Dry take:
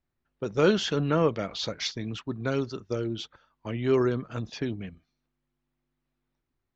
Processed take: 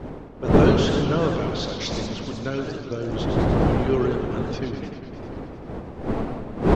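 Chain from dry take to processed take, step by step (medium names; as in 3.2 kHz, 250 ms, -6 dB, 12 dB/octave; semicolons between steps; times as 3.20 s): wind noise 400 Hz -26 dBFS; echo from a far wall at 22 m, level -9 dB; modulated delay 100 ms, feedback 78%, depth 213 cents, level -8.5 dB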